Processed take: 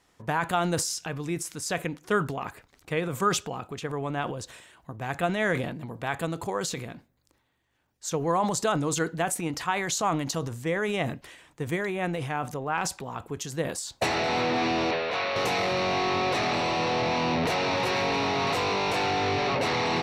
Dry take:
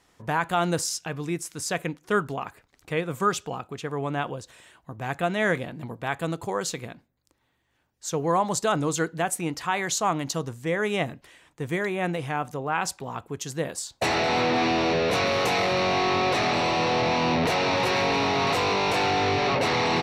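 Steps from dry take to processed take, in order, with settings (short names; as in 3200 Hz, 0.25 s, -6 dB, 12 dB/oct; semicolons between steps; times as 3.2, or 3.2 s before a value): 14.91–15.36 three-band isolator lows -13 dB, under 490 Hz, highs -24 dB, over 4800 Hz; transient shaper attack +3 dB, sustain +8 dB; gain -3 dB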